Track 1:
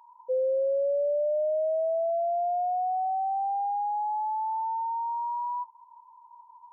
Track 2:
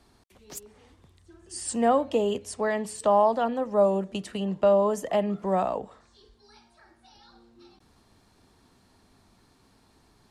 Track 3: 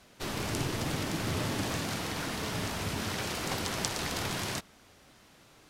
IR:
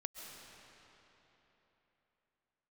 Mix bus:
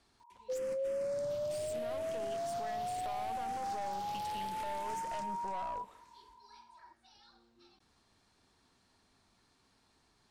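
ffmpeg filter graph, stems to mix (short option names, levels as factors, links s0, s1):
-filter_complex "[0:a]adelay=200,volume=0.447[s0];[1:a]lowpass=9000,tiltshelf=f=840:g=-4,volume=0.562,asplit=2[s1][s2];[2:a]asplit=2[s3][s4];[s4]afreqshift=-0.74[s5];[s3][s5]amix=inputs=2:normalize=1,adelay=350,volume=0.531,asplit=2[s6][s7];[s7]volume=0.398[s8];[s2]apad=whole_len=266688[s9];[s6][s9]sidechaingate=range=0.0224:threshold=0.00141:ratio=16:detection=peak[s10];[s1][s10]amix=inputs=2:normalize=0,aeval=exprs='(tanh(50.1*val(0)+0.7)-tanh(0.7))/50.1':c=same,acompressor=threshold=0.00794:ratio=2,volume=1[s11];[s8]aecho=0:1:289|578|867|1156|1445:1|0.38|0.144|0.0549|0.0209[s12];[s0][s11][s12]amix=inputs=3:normalize=0,alimiter=level_in=2.11:limit=0.0631:level=0:latency=1:release=173,volume=0.473"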